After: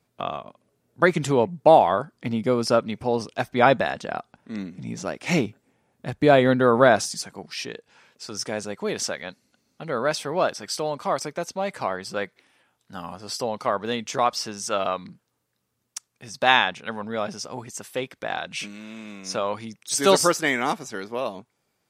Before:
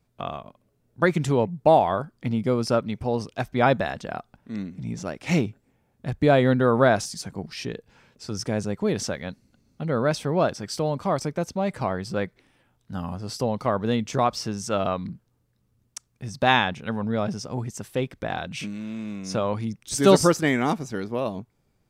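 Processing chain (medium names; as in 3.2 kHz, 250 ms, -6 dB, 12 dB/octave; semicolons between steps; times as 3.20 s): high-pass 270 Hz 6 dB/octave, from 7.24 s 720 Hz; trim +4 dB; MP3 64 kbps 48 kHz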